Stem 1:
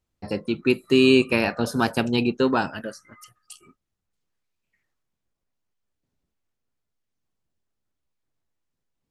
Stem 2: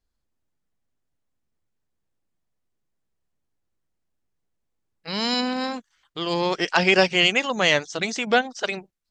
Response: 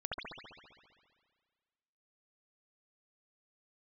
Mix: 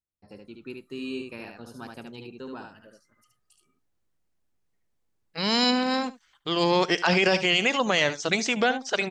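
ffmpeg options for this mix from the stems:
-filter_complex "[0:a]volume=-19.5dB,asplit=2[link_01][link_02];[link_02]volume=-4dB[link_03];[1:a]adelay=300,volume=1.5dB,asplit=2[link_04][link_05];[link_05]volume=-18dB[link_06];[link_03][link_06]amix=inputs=2:normalize=0,aecho=0:1:73:1[link_07];[link_01][link_04][link_07]amix=inputs=3:normalize=0,alimiter=limit=-10dB:level=0:latency=1:release=27"

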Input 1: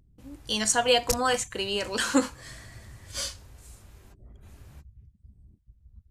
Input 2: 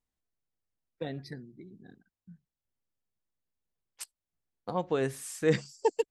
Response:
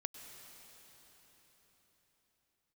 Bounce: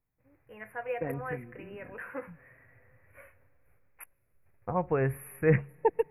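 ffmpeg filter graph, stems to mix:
-filter_complex "[0:a]highpass=94,agate=range=-9dB:threshold=-52dB:ratio=16:detection=peak,equalizer=frequency=125:width_type=o:width=1:gain=6,equalizer=frequency=250:width_type=o:width=1:gain=-8,equalizer=frequency=500:width_type=o:width=1:gain=8,equalizer=frequency=2000:width_type=o:width=1:gain=9,equalizer=frequency=8000:width_type=o:width=1:gain=-5,volume=-19dB,asplit=2[link_01][link_02];[link_02]volume=-14dB[link_03];[1:a]asubboost=boost=9.5:cutoff=81,volume=2.5dB,asplit=2[link_04][link_05];[link_05]volume=-21dB[link_06];[2:a]atrim=start_sample=2205[link_07];[link_03][link_06]amix=inputs=2:normalize=0[link_08];[link_08][link_07]afir=irnorm=-1:irlink=0[link_09];[link_01][link_04][link_09]amix=inputs=3:normalize=0,asuperstop=centerf=5500:order=20:qfactor=0.68"

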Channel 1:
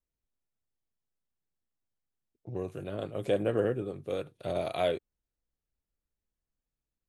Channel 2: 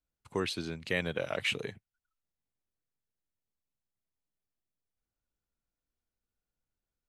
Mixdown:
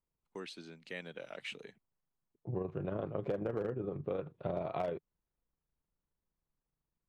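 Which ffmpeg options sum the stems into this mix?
ffmpeg -i stem1.wav -i stem2.wav -filter_complex "[0:a]equalizer=frequency=160:width_type=o:width=0.67:gain=8,equalizer=frequency=400:width_type=o:width=0.67:gain=3,equalizer=frequency=1000:width_type=o:width=0.67:gain=7,tremolo=f=26:d=0.462,lowpass=2000,volume=1dB[link_01];[1:a]highpass=frequency=160:width=0.5412,highpass=frequency=160:width=1.3066,bandreject=frequency=1100:width=15,agate=range=-19dB:threshold=-51dB:ratio=16:detection=peak,volume=-12dB[link_02];[link_01][link_02]amix=inputs=2:normalize=0,lowpass=9100,volume=19dB,asoftclip=hard,volume=-19dB,acompressor=threshold=-32dB:ratio=12" out.wav

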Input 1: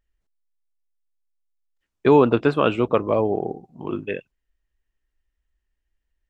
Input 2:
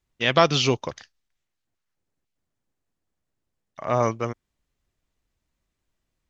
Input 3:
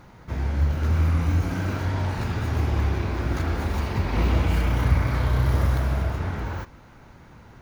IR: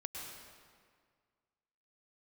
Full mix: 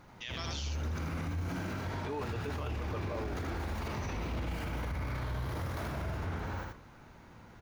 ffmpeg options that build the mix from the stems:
-filter_complex "[0:a]lowshelf=frequency=390:gain=-10.5,aecho=1:1:6.7:0.86,volume=-15dB[link_01];[1:a]aderivative,volume=-5dB,asplit=2[link_02][link_03];[link_03]volume=-5.5dB[link_04];[2:a]lowshelf=frequency=140:gain=-3.5,bandreject=frequency=64.02:width_type=h:width=4,bandreject=frequency=128.04:width_type=h:width=4,bandreject=frequency=192.06:width_type=h:width=4,bandreject=frequency=256.08:width_type=h:width=4,bandreject=frequency=320.1:width_type=h:width=4,bandreject=frequency=384.12:width_type=h:width=4,bandreject=frequency=448.14:width_type=h:width=4,bandreject=frequency=512.16:width_type=h:width=4,bandreject=frequency=576.18:width_type=h:width=4,bandreject=frequency=640.2:width_type=h:width=4,bandreject=frequency=704.22:width_type=h:width=4,bandreject=frequency=768.24:width_type=h:width=4,bandreject=frequency=832.26:width_type=h:width=4,bandreject=frequency=896.28:width_type=h:width=4,bandreject=frequency=960.3:width_type=h:width=4,bandreject=frequency=1024.32:width_type=h:width=4,bandreject=frequency=1088.34:width_type=h:width=4,bandreject=frequency=1152.36:width_type=h:width=4,bandreject=frequency=1216.38:width_type=h:width=4,bandreject=frequency=1280.4:width_type=h:width=4,bandreject=frequency=1344.42:width_type=h:width=4,bandreject=frequency=1408.44:width_type=h:width=4,bandreject=frequency=1472.46:width_type=h:width=4,bandreject=frequency=1536.48:width_type=h:width=4,bandreject=frequency=1600.5:width_type=h:width=4,bandreject=frequency=1664.52:width_type=h:width=4,bandreject=frequency=1728.54:width_type=h:width=4,bandreject=frequency=1792.56:width_type=h:width=4,bandreject=frequency=1856.58:width_type=h:width=4,bandreject=frequency=1920.6:width_type=h:width=4,bandreject=frequency=1984.62:width_type=h:width=4,bandreject=frequency=2048.64:width_type=h:width=4,volume=-6dB,asplit=2[link_05][link_06];[link_06]volume=-3.5dB[link_07];[link_04][link_07]amix=inputs=2:normalize=0,aecho=0:1:80:1[link_08];[link_01][link_02][link_05][link_08]amix=inputs=4:normalize=0,alimiter=level_in=5dB:limit=-24dB:level=0:latency=1:release=26,volume=-5dB"

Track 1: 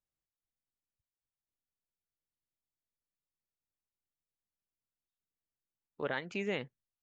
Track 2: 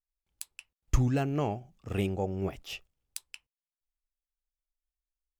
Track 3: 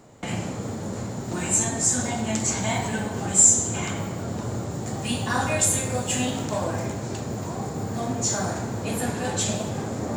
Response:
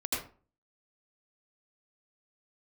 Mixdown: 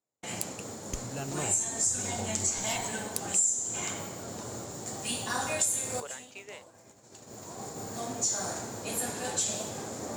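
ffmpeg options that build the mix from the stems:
-filter_complex "[0:a]highpass=frequency=430:width=0.5412,highpass=frequency=430:width=1.3066,acompressor=threshold=-40dB:ratio=12,volume=1.5dB,asplit=2[link_01][link_02];[1:a]asubboost=boost=8.5:cutoff=130,acompressor=threshold=-26dB:ratio=6,volume=-1.5dB[link_03];[2:a]volume=-6.5dB[link_04];[link_02]apad=whole_len=448213[link_05];[link_04][link_05]sidechaincompress=threshold=-50dB:ratio=6:attack=11:release=1190[link_06];[link_01][link_03][link_06]amix=inputs=3:normalize=0,agate=range=-33dB:threshold=-36dB:ratio=3:detection=peak,bass=frequency=250:gain=-9,treble=frequency=4000:gain=9,acompressor=threshold=-26dB:ratio=4"

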